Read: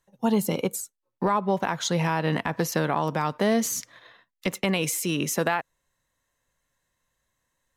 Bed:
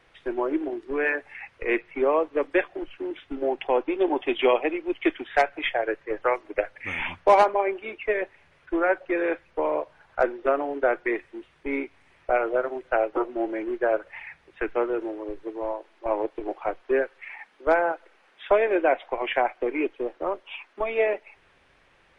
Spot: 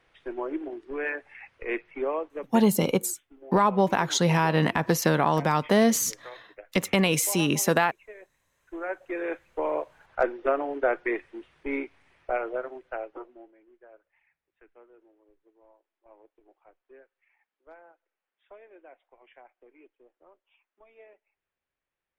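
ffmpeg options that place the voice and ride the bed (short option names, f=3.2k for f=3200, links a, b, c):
-filter_complex "[0:a]adelay=2300,volume=2.5dB[a];[1:a]volume=13dB,afade=t=out:st=2.01:d=0.72:silence=0.177828,afade=t=in:st=8.48:d=1.33:silence=0.112202,afade=t=out:st=11.71:d=1.81:silence=0.0398107[b];[a][b]amix=inputs=2:normalize=0"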